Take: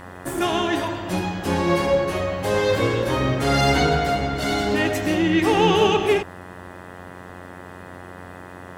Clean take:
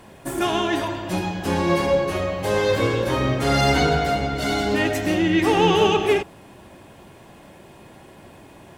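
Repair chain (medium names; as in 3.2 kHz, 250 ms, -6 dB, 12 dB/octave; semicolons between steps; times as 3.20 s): de-hum 90.2 Hz, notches 22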